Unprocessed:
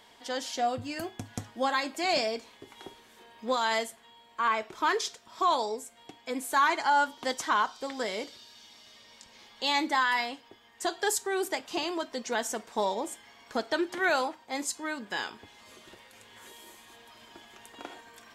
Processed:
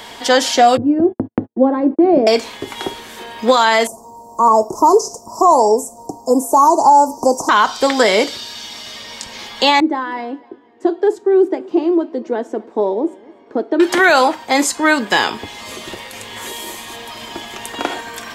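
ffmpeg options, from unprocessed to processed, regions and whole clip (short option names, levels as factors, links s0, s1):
-filter_complex "[0:a]asettb=1/sr,asplit=3[s0][s1][s2];[s0]atrim=end=0.774[s3];[s1]atrim=start=0.77:end=2.27,asetpts=PTS-STARTPTS,afade=t=in:d=0.004:c=qsin,afade=t=out:st=1.496:d=0.004:c=qsin,lowpass=f=350:t=q:w=1.8,agate=range=0.00355:threshold=0.00562:ratio=16:release=100:detection=peak[s4];[s2]atrim=start=2.266[s5];[s3][s4]acrossfade=d=0.004:c1=hsin:c2=qsin[s6];[s6][s5]acrossfade=d=0.004:c1=qsin:c2=hsin,asettb=1/sr,asplit=3[s7][s8][s9];[s7]atrim=end=3.874[s10];[s8]atrim=start=3.87:end=7.49,asetpts=PTS-STARTPTS,afade=t=in:d=0.004:c=qsin,afade=t=out:st=3.616:d=0.004:c=qsin,asuperstop=centerf=2400:order=12:qfactor=0.54,acrossover=split=3100[s11][s12];[s12]acompressor=threshold=0.00501:ratio=4:attack=1:release=60[s13];[s11][s13]amix=inputs=2:normalize=0[s14];[s9]atrim=start=7.486[s15];[s10][s14]acrossfade=d=0.004:c1=hsin:c2=qsin[s16];[s16][s15]acrossfade=d=0.004:c1=qsin:c2=hsin,asettb=1/sr,asplit=3[s17][s18][s19];[s17]atrim=end=9.804[s20];[s18]atrim=start=9.8:end=13.8,asetpts=PTS-STARTPTS,afade=t=in:d=0.004:c=qsin,afade=t=out:st=3.996:d=0.004:c=qsin,bandpass=f=340:t=q:w=3.1,aecho=1:1:250|500:0.0631|0.0246,atrim=end_sample=176400[s21];[s19]atrim=start=13.796[s22];[s20][s21]acrossfade=d=0.004:c1=hsin:c2=qsin[s23];[s23][s22]acrossfade=d=0.004:c1=qsin:c2=hsin,asettb=1/sr,asplit=3[s24][s25][s26];[s24]atrim=end=15.074[s27];[s25]atrim=start=15.07:end=17.68,asetpts=PTS-STARTPTS,afade=t=in:d=0.004:c=qsin,afade=t=out:st=2.606:d=0.004:c=qsin,equalizer=f=1500:t=o:w=0.24:g=-6.5,aeval=exprs='clip(val(0),-1,0.0398)':c=same[s28];[s26]atrim=start=17.676[s29];[s27][s28]acrossfade=d=0.004:c1=hsin:c2=qsin[s30];[s30][s29]acrossfade=d=0.004:c1=qsin:c2=hsin,acrossover=split=230|2500[s31][s32][s33];[s31]acompressor=threshold=0.002:ratio=4[s34];[s32]acompressor=threshold=0.0398:ratio=4[s35];[s33]acompressor=threshold=0.00891:ratio=4[s36];[s34][s35][s36]amix=inputs=3:normalize=0,alimiter=level_in=14.1:limit=0.891:release=50:level=0:latency=1,volume=0.891"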